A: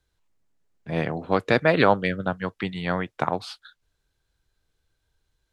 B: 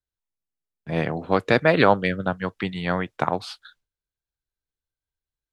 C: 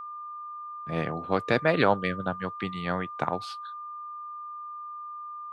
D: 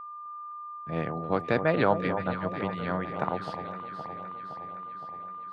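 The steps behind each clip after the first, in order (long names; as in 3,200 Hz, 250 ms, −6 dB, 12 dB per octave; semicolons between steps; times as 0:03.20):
noise gate with hold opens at −42 dBFS; level +1.5 dB
steady tone 1,200 Hz −31 dBFS; level −5.5 dB
high-shelf EQ 3,500 Hz −11.5 dB; delay that swaps between a low-pass and a high-pass 258 ms, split 1,100 Hz, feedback 78%, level −8 dB; level −1 dB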